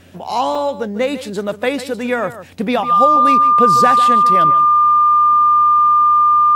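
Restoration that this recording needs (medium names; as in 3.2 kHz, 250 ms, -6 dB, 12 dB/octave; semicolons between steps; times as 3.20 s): de-hum 90 Hz, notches 10; band-stop 1.2 kHz, Q 30; interpolate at 0.55 s, 3.1 ms; inverse comb 148 ms -13.5 dB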